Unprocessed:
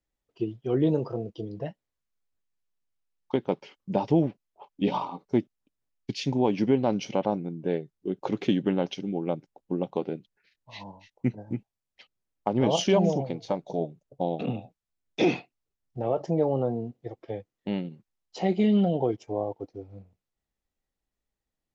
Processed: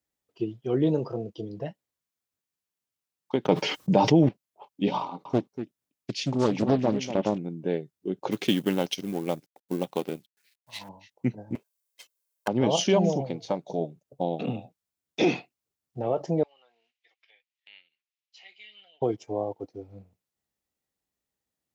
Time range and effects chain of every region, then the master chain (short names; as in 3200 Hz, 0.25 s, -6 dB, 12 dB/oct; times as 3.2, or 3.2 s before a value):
3.45–4.29 gate -45 dBFS, range -12 dB + comb 6.5 ms, depth 35% + fast leveller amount 70%
5.01–7.38 echo 0.241 s -10.5 dB + Doppler distortion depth 0.69 ms
8.31–10.89 G.711 law mismatch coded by A + high shelf 2100 Hz +10 dB
11.55–12.48 minimum comb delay 1.9 ms + HPF 350 Hz + high shelf 5600 Hz +11 dB
16.43–19.02 ladder band-pass 2900 Hz, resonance 45% + mismatched tape noise reduction encoder only
whole clip: HPF 89 Hz; high shelf 5900 Hz +6.5 dB